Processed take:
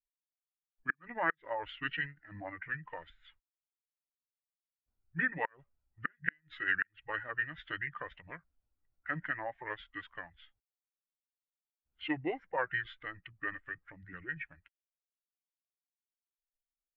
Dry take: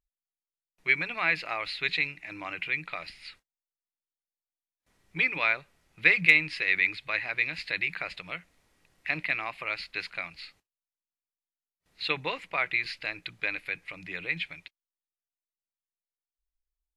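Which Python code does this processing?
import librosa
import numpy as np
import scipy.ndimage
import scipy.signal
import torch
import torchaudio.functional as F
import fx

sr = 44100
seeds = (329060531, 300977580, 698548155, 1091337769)

y = fx.bin_expand(x, sr, power=1.5)
y = scipy.signal.sosfilt(scipy.signal.butter(2, 2500.0, 'lowpass', fs=sr, output='sos'), y)
y = fx.gate_flip(y, sr, shuts_db=-17.0, range_db=-41)
y = fx.formant_shift(y, sr, semitones=-5)
y = y * librosa.db_to_amplitude(1.0)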